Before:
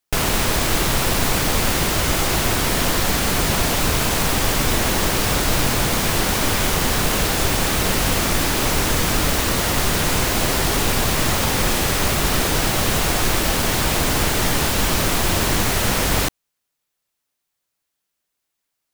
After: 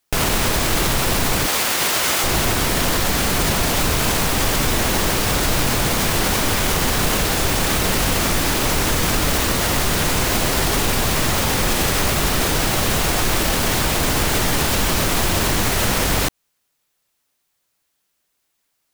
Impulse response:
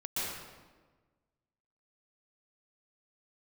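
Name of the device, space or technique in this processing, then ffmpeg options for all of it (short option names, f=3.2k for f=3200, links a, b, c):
clipper into limiter: -filter_complex "[0:a]asettb=1/sr,asplit=3[a][b][c];[a]atrim=end=1.464[d];[b]atrim=start=1.46:end=2.24,asetpts=PTS-STARTPTS,afade=t=in:d=0.004:c=qsin,afade=t=out:st=0.776:d=0.004:c=qsin,highpass=f=750:p=1[e];[c]atrim=start=2.236[f];[d][e]acrossfade=d=0.004:c1=hsin:c2=qsin[g];[g][f]acrossfade=d=0.004:c1=qsin:c2=hsin,asoftclip=type=hard:threshold=-8.5dB,alimiter=limit=-16dB:level=0:latency=1:release=116,volume=7dB"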